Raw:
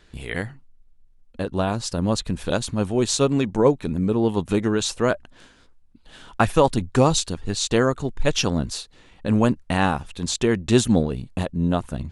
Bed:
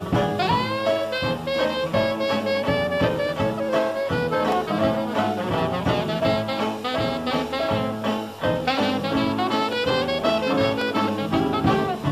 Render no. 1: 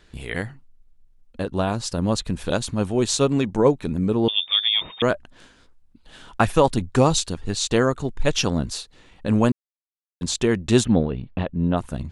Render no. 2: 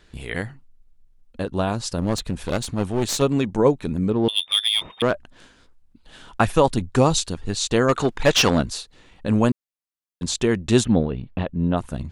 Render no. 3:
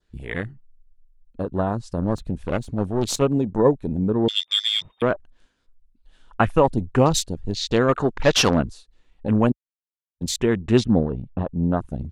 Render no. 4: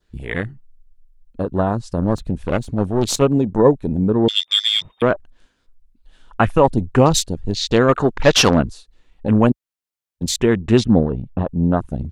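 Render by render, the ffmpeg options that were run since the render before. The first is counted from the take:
ffmpeg -i in.wav -filter_complex "[0:a]asettb=1/sr,asplit=3[link_01][link_02][link_03];[link_01]atrim=end=4.284[link_04];[link_02]atrim=start=4.28:end=5.02,asetpts=PTS-STARTPTS,afade=type=in:duration=0.004:curve=qsin,afade=type=out:start_time=0.736:duration=0.004:curve=qsin,lowpass=frequency=3100:width_type=q:width=0.5098,lowpass=frequency=3100:width_type=q:width=0.6013,lowpass=frequency=3100:width_type=q:width=0.9,lowpass=frequency=3100:width_type=q:width=2.563,afreqshift=-3700[link_05];[link_03]atrim=start=5.016[link_06];[link_04][link_05]acrossfade=duration=0.004:curve1=hsin:curve2=qsin[link_07];[link_07][link_06]acrossfade=duration=0.004:curve1=qsin:curve2=hsin,asplit=3[link_08][link_09][link_10];[link_08]afade=type=out:start_time=10.83:duration=0.02[link_11];[link_09]lowpass=frequency=3400:width=0.5412,lowpass=frequency=3400:width=1.3066,afade=type=in:start_time=10.83:duration=0.02,afade=type=out:start_time=11.76:duration=0.02[link_12];[link_10]afade=type=in:start_time=11.76:duration=0.02[link_13];[link_11][link_12][link_13]amix=inputs=3:normalize=0,asplit=3[link_14][link_15][link_16];[link_14]atrim=end=9.52,asetpts=PTS-STARTPTS,afade=type=out:start_time=9.516:duration=0.004:curve=hsin[link_17];[link_15]atrim=start=9.52:end=10.21,asetpts=PTS-STARTPTS,volume=0[link_18];[link_16]atrim=start=10.21,asetpts=PTS-STARTPTS,afade=type=in:duration=0.004:curve=hsin[link_19];[link_17][link_18][link_19]concat=n=3:v=0:a=1" out.wav
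ffmpeg -i in.wav -filter_complex "[0:a]asettb=1/sr,asplit=3[link_01][link_02][link_03];[link_01]atrim=end=1.984[link_04];[link_02]atrim=start=1.98:end=3.22,asetpts=PTS-STARTPTS,afade=type=in:duration=0.004:curve=qsin,afade=type=out:start_time=1.236:duration=0.004:curve=qsin,aeval=exprs='clip(val(0),-1,0.0531)':channel_layout=same[link_05];[link_03]atrim=start=3.216[link_06];[link_04][link_05]acrossfade=duration=0.004:curve1=hsin:curve2=qsin[link_07];[link_07][link_06]acrossfade=duration=0.004:curve1=qsin:curve2=hsin,asettb=1/sr,asplit=3[link_08][link_09][link_10];[link_08]atrim=end=4.104[link_11];[link_09]atrim=start=4.1:end=5.13,asetpts=PTS-STARTPTS,afade=type=in:duration=0.004:curve=qsin,afade=type=out:start_time=1.026:duration=0.004:curve=qsin,adynamicsmooth=sensitivity=2:basefreq=2500[link_12];[link_10]atrim=start=5.126[link_13];[link_11][link_12]acrossfade=duration=0.004:curve1=hsin:curve2=qsin[link_14];[link_14][link_13]acrossfade=duration=0.004:curve1=qsin:curve2=hsin,asplit=3[link_15][link_16][link_17];[link_15]afade=type=out:start_time=7.88:duration=0.02[link_18];[link_16]asplit=2[link_19][link_20];[link_20]highpass=frequency=720:poles=1,volume=21dB,asoftclip=type=tanh:threshold=-6dB[link_21];[link_19][link_21]amix=inputs=2:normalize=0,lowpass=frequency=4000:poles=1,volume=-6dB,afade=type=in:start_time=7.88:duration=0.02,afade=type=out:start_time=8.61:duration=0.02[link_22];[link_17]afade=type=in:start_time=8.61:duration=0.02[link_23];[link_18][link_22][link_23]amix=inputs=3:normalize=0" out.wav
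ffmpeg -i in.wav -af "afwtdn=0.0251,adynamicequalizer=threshold=0.0112:dfrequency=2300:dqfactor=1.5:tfrequency=2300:tqfactor=1.5:attack=5:release=100:ratio=0.375:range=2.5:mode=cutabove:tftype=bell" out.wav
ffmpeg -i in.wav -af "volume=4.5dB,alimiter=limit=-1dB:level=0:latency=1" out.wav

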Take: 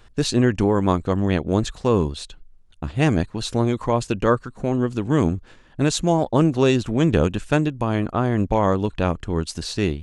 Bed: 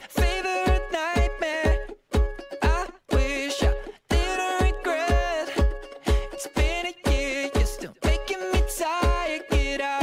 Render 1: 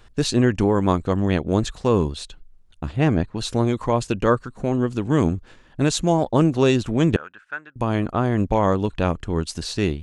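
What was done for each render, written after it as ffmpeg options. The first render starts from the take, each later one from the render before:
ffmpeg -i in.wav -filter_complex "[0:a]asettb=1/sr,asplit=3[link_01][link_02][link_03];[link_01]atrim=end=2.964[link_04];[link_02]atrim=start=2.96:end=3.36,asetpts=PTS-STARTPTS,afade=type=in:duration=0.004:curve=qsin,afade=type=out:start_time=0.396:duration=0.004:curve=qsin,aemphasis=mode=reproduction:type=75kf[link_05];[link_03]atrim=start=3.356[link_06];[link_04][link_05]acrossfade=duration=0.004:curve1=hsin:curve2=qsin[link_07];[link_07][link_06]acrossfade=duration=0.004:curve1=qsin:curve2=hsin,asettb=1/sr,asplit=3[link_08][link_09][link_10];[link_08]atrim=end=7.164[link_11];[link_09]atrim=start=7.16:end=7.76,asetpts=PTS-STARTPTS,afade=type=in:duration=0.004:curve=qsin,afade=type=out:start_time=0.596:duration=0.004:curve=qsin,bandpass=frequency=1500:width_type=q:width=5.3[link_12];[link_10]atrim=start=7.756[link_13];[link_11][link_12]acrossfade=duration=0.004:curve1=hsin:curve2=qsin[link_14];[link_14][link_13]acrossfade=duration=0.004:curve1=qsin:curve2=hsin" out.wav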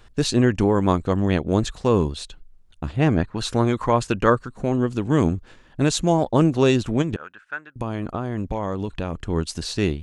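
ffmpeg -i in.wav -filter_complex "[0:a]asettb=1/sr,asplit=3[link_01][link_02][link_03];[link_01]atrim=end=3.184[link_04];[link_02]atrim=start=3.18:end=4.3,asetpts=PTS-STARTPTS,afade=type=in:duration=0.004:curve=qsin,afade=type=out:start_time=1.116:duration=0.004:curve=qsin,equalizer=frequency=1400:width_type=o:width=1.2:gain=6[link_05];[link_03]atrim=start=4.296[link_06];[link_04][link_05]acrossfade=duration=0.004:curve1=hsin:curve2=qsin[link_07];[link_07][link_06]acrossfade=duration=0.004:curve1=qsin:curve2=hsin,asplit=3[link_08][link_09][link_10];[link_08]afade=type=out:start_time=7.01:duration=0.02[link_11];[link_09]acompressor=threshold=-21dB:ratio=6:attack=3.2:release=140:knee=1:detection=peak,afade=type=in:start_time=7.01:duration=0.02,afade=type=out:start_time=9.12:duration=0.02[link_12];[link_10]afade=type=in:start_time=9.12:duration=0.02[link_13];[link_11][link_12][link_13]amix=inputs=3:normalize=0" out.wav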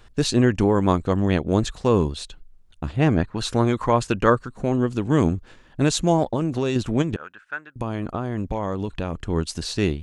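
ffmpeg -i in.wav -filter_complex "[0:a]asettb=1/sr,asplit=3[link_01][link_02][link_03];[link_01]atrim=end=6.234[link_04];[link_02]atrim=start=6.23:end=6.76,asetpts=PTS-STARTPTS,afade=type=in:duration=0.004:curve=qsin,afade=type=out:start_time=0.526:duration=0.004:curve=qsin,acompressor=threshold=-18dB:ratio=6:attack=3.2:release=140:knee=1:detection=peak[link_05];[link_03]atrim=start=6.756[link_06];[link_04][link_05]acrossfade=duration=0.004:curve1=hsin:curve2=qsin[link_07];[link_07][link_06]acrossfade=duration=0.004:curve1=qsin:curve2=hsin" out.wav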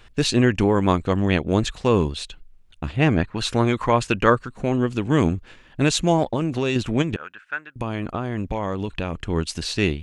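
ffmpeg -i in.wav -af "equalizer=frequency=2500:width=1.3:gain=7" out.wav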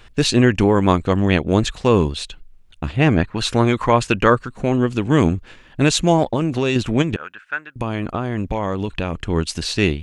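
ffmpeg -i in.wav -af "volume=3.5dB,alimiter=limit=-1dB:level=0:latency=1" out.wav

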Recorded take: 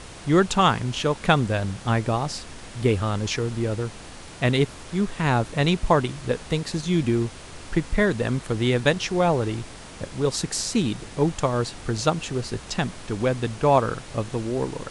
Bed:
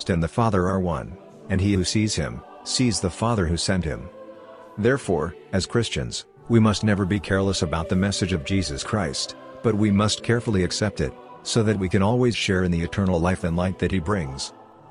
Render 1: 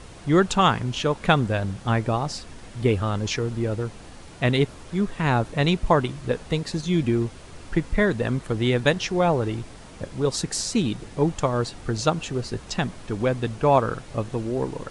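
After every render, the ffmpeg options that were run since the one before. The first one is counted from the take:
ffmpeg -i in.wav -af "afftdn=noise_reduction=6:noise_floor=-41" out.wav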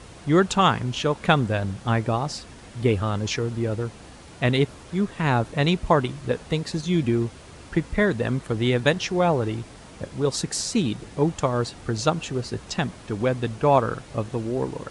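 ffmpeg -i in.wav -af "highpass=43" out.wav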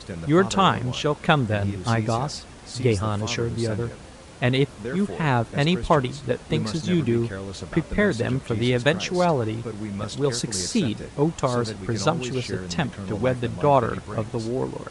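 ffmpeg -i in.wav -i bed.wav -filter_complex "[1:a]volume=-12dB[link_01];[0:a][link_01]amix=inputs=2:normalize=0" out.wav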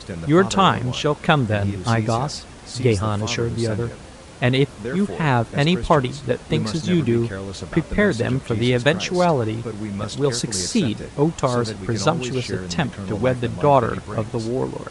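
ffmpeg -i in.wav -af "volume=3dB,alimiter=limit=-3dB:level=0:latency=1" out.wav

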